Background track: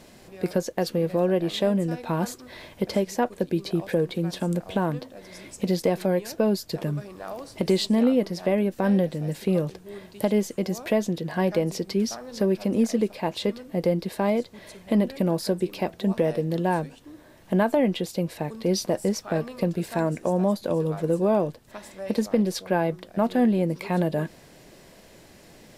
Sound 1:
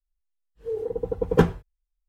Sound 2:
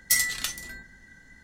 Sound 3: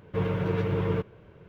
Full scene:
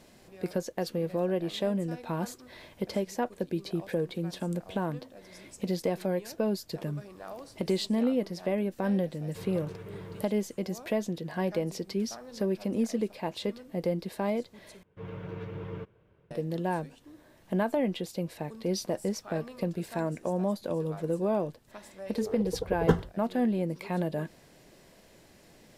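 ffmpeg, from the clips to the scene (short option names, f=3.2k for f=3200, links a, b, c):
-filter_complex "[3:a]asplit=2[a][b];[0:a]volume=-6.5dB[c];[b]dynaudnorm=f=140:g=3:m=5.5dB[d];[1:a]asuperstop=centerf=2400:order=4:qfactor=5.3[e];[c]asplit=2[f][g];[f]atrim=end=14.834[h];[d]atrim=end=1.48,asetpts=PTS-STARTPTS,volume=-17.5dB[i];[g]atrim=start=16.306[j];[a]atrim=end=1.48,asetpts=PTS-STARTPTS,volume=-16.5dB,afade=t=in:d=0.004:c=hsin,afade=t=out:st=1.476:d=0.004:c=hsin,adelay=9210[k];[e]atrim=end=2.08,asetpts=PTS-STARTPTS,volume=-6dB,afade=t=in:d=0.004:c=hsin,afade=t=out:st=2.076:d=0.004:c=hsin,adelay=21500[l];[h][i]acrossfade=d=0.004:c1=hsin:c2=hsin[m];[m][j]acrossfade=d=0.004:c1=hsin:c2=hsin[n];[n][k][l]amix=inputs=3:normalize=0"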